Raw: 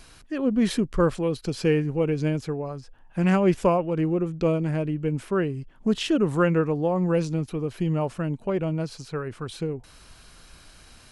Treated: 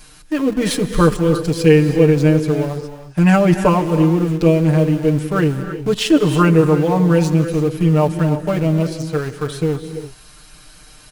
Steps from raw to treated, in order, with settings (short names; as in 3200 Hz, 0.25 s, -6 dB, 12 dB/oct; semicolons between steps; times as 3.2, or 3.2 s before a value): high shelf 7800 Hz +8 dB; comb 6.6 ms, depth 100%; in parallel at -5.5 dB: sample gate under -26 dBFS; on the sum: non-linear reverb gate 0.36 s rising, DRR 9 dB; gain +1.5 dB